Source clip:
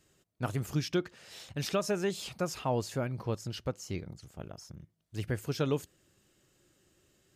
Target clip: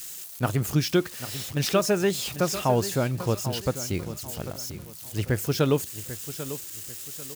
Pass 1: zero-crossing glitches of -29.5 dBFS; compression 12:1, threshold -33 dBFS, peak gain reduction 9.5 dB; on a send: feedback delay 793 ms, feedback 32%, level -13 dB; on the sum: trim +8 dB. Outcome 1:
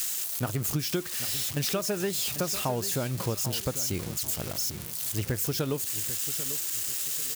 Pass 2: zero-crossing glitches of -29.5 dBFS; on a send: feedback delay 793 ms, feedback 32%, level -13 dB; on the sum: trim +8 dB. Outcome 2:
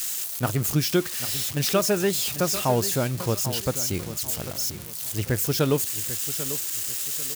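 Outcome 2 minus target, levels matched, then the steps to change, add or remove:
zero-crossing glitches: distortion +9 dB
change: zero-crossing glitches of -39 dBFS

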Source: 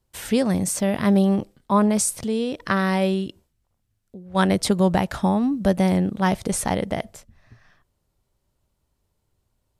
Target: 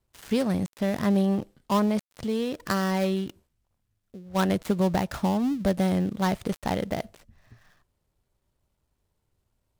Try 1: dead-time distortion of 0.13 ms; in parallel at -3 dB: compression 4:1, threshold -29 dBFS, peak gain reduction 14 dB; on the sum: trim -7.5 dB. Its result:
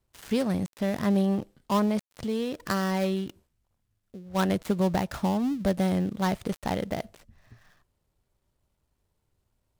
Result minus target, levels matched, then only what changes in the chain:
compression: peak gain reduction +6 dB
change: compression 4:1, threshold -21 dBFS, peak gain reduction 8 dB

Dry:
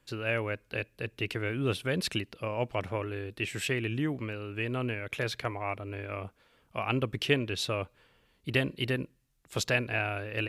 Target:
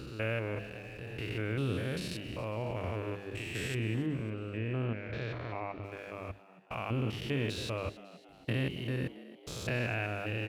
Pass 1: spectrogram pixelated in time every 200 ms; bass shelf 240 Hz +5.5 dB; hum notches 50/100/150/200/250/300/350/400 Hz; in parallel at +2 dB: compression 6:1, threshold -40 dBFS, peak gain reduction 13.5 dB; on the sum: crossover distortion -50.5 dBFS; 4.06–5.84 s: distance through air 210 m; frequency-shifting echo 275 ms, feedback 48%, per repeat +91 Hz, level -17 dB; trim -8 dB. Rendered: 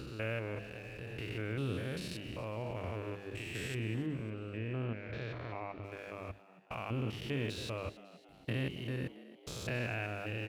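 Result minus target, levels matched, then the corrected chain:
compression: peak gain reduction +9.5 dB
spectrogram pixelated in time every 200 ms; bass shelf 240 Hz +5.5 dB; hum notches 50/100/150/200/250/300/350/400 Hz; in parallel at +2 dB: compression 6:1, threshold -28.5 dBFS, peak gain reduction 4 dB; on the sum: crossover distortion -50.5 dBFS; 4.06–5.84 s: distance through air 210 m; frequency-shifting echo 275 ms, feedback 48%, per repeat +91 Hz, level -17 dB; trim -8 dB

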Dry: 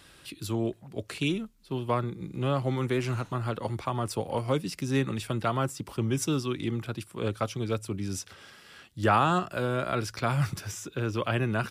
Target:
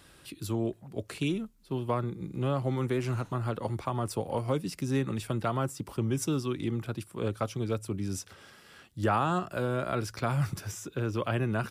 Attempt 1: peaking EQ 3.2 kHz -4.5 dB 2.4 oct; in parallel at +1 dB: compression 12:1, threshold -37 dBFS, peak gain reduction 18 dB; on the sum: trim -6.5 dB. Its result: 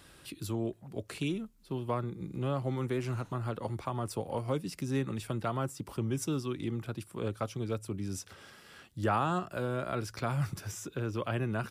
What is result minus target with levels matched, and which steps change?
compression: peak gain reduction +10.5 dB
change: compression 12:1, threshold -25.5 dBFS, peak gain reduction 7.5 dB

